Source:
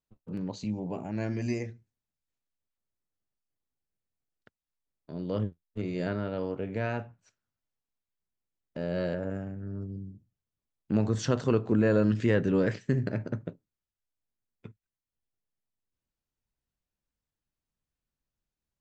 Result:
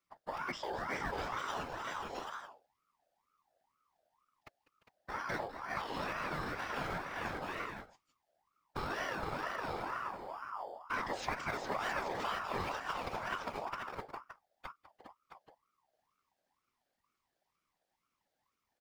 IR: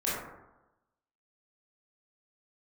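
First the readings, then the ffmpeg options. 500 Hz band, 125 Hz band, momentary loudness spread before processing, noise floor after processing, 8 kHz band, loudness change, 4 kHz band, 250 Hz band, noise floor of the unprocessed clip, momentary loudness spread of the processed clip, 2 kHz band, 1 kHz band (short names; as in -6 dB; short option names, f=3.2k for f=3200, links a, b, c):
-11.0 dB, -18.0 dB, 15 LU, under -85 dBFS, n/a, -9.0 dB, +2.0 dB, -17.5 dB, under -85 dBFS, 13 LU, +2.0 dB, +7.5 dB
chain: -filter_complex "[0:a]equalizer=f=260:t=o:w=0.79:g=-4,aecho=1:1:198|348|405|665|828:0.141|0.133|0.335|0.316|0.126,acrossover=split=770|3300[a][b][c];[a]acompressor=threshold=-42dB:ratio=4[d];[b]acompressor=threshold=-51dB:ratio=4[e];[c]acompressor=threshold=-59dB:ratio=4[f];[d][e][f]amix=inputs=3:normalize=0,asplit=2[g][h];[h]acrusher=samples=11:mix=1:aa=0.000001,volume=-7dB[i];[g][i]amix=inputs=2:normalize=0,afftfilt=real='hypot(re,im)*cos(2*PI*random(0))':imag='hypot(re,im)*sin(2*PI*random(1))':win_size=512:overlap=0.75,equalizer=f=400:t=o:w=0.67:g=-4,equalizer=f=1k:t=o:w=0.67:g=11,equalizer=f=4k:t=o:w=0.67:g=8,aeval=exprs='val(0)*sin(2*PI*950*n/s+950*0.35/2.1*sin(2*PI*2.1*n/s))':c=same,volume=9dB"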